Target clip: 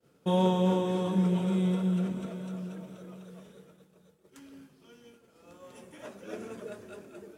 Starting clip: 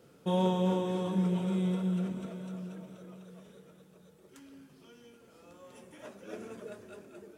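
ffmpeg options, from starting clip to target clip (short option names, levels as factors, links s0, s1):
-af "agate=range=0.0224:threshold=0.00251:ratio=3:detection=peak,volume=1.41"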